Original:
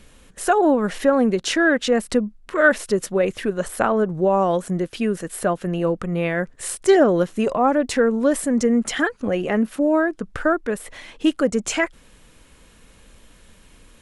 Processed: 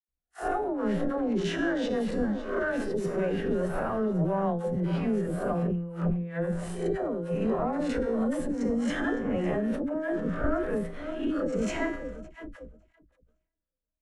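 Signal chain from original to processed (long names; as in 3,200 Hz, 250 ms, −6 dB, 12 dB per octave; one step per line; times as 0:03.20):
peak hold with a rise ahead of every peak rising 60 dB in 0.45 s
in parallel at −7.5 dB: asymmetric clip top −23.5 dBFS
on the sum: low-pass filter 1,200 Hz 6 dB per octave
low-shelf EQ 300 Hz +2.5 dB
on a send: feedback echo with a high-pass in the loop 561 ms, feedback 65%, high-pass 170 Hz, level −15.5 dB
on the sum: brickwall limiter −10 dBFS, peak gain reduction 8.5 dB
tuned comb filter 57 Hz, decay 0.7 s, harmonics odd, mix 80%
noise gate −42 dBFS, range −47 dB
compressor whose output falls as the input rises −29 dBFS, ratio −0.5
low-shelf EQ 140 Hz +9.5 dB
all-pass dispersion lows, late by 87 ms, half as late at 580 Hz
level that may fall only so fast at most 97 dB per second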